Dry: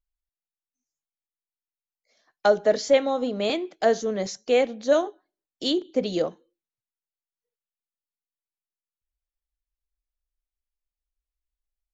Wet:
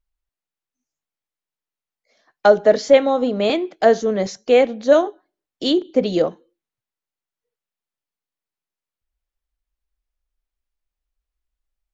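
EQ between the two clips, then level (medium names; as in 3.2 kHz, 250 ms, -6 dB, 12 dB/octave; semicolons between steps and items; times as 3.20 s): treble shelf 4.7 kHz -9.5 dB; +7.0 dB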